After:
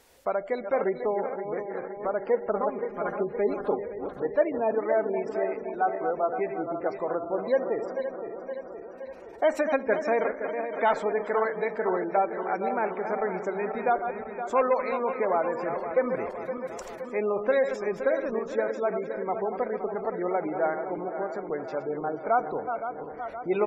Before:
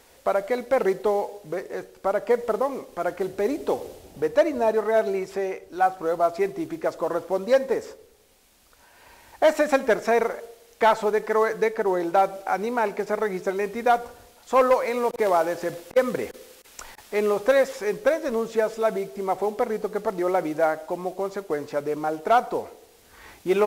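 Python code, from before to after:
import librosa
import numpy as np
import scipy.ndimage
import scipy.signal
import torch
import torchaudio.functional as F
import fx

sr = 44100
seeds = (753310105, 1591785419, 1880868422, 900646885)

y = fx.reverse_delay_fb(x, sr, ms=259, feedback_pct=77, wet_db=-8)
y = fx.comb(y, sr, ms=4.9, depth=0.58, at=(2.53, 3.79))
y = fx.spec_gate(y, sr, threshold_db=-30, keep='strong')
y = y * librosa.db_to_amplitude(-5.0)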